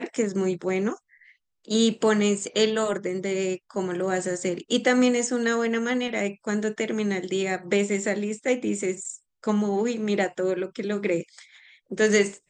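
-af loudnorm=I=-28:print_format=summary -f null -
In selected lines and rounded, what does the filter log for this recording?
Input Integrated:    -25.3 LUFS
Input True Peak:      -7.1 dBTP
Input LRA:             2.1 LU
Input Threshold:     -35.8 LUFS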